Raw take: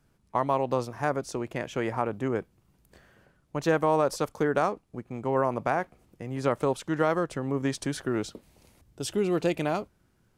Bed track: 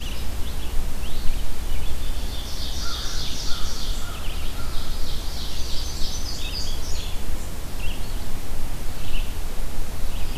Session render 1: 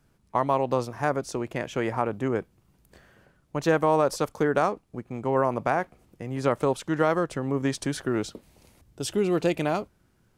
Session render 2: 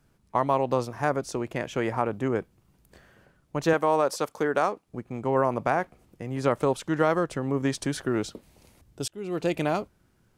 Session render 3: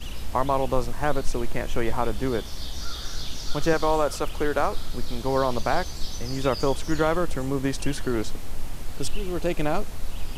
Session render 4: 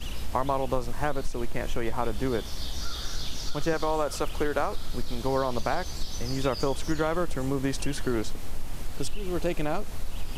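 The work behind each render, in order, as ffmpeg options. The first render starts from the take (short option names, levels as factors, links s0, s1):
-af "volume=1.26"
-filter_complex "[0:a]asettb=1/sr,asplit=3[s0][s1][s2];[s0]atrim=end=3.734[s3];[s1]atrim=start=3.73:end=4.87,asetpts=PTS-STARTPTS,afade=t=in:d=0.004:c=qsin,afade=t=out:st=1.136:d=0.004:c=qsin,highpass=f=320:p=1[s4];[s2]atrim=start=4.866[s5];[s3][s4]acrossfade=d=0.004:c1=hsin:c2=qsin[s6];[s6][s5]acrossfade=d=0.004:c1=qsin:c2=hsin,asplit=2[s7][s8];[s7]atrim=end=9.08,asetpts=PTS-STARTPTS,afade=t=out:st=9.076:d=0.004:c=hsin[s9];[s8]atrim=start=9.08,asetpts=PTS-STARTPTS,afade=t=in:d=0.51[s10];[s9][s10]concat=n=2:v=0:a=1"
-filter_complex "[1:a]volume=0.531[s0];[0:a][s0]amix=inputs=2:normalize=0"
-af "acompressor=threshold=0.0891:ratio=6"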